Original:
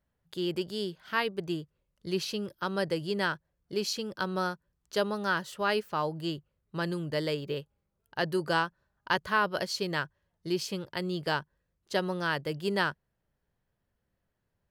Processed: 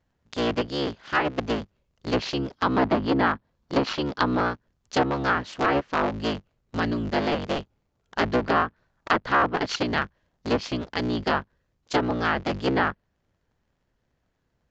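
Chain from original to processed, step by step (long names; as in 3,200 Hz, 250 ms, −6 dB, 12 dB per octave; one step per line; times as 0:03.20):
sub-harmonics by changed cycles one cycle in 3, inverted
0:02.51–0:04.37: graphic EQ with 15 bands 250 Hz +5 dB, 1,000 Hz +5 dB, 4,000 Hz +4 dB
treble cut that deepens with the level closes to 1,800 Hz, closed at −24 dBFS
downsampling to 16,000 Hz
level +6.5 dB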